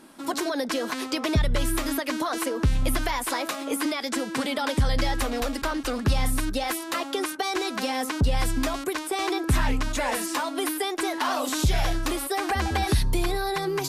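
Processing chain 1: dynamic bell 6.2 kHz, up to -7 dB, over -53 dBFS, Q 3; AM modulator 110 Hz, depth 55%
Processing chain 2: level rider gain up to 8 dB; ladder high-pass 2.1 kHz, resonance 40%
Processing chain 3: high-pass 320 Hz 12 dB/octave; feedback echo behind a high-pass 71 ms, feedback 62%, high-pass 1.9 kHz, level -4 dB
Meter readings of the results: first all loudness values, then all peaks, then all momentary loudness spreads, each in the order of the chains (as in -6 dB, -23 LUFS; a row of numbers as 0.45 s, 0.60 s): -30.0 LUFS, -30.5 LUFS, -27.5 LUFS; -14.0 dBFS, -15.0 dBFS, -13.0 dBFS; 4 LU, 4 LU, 3 LU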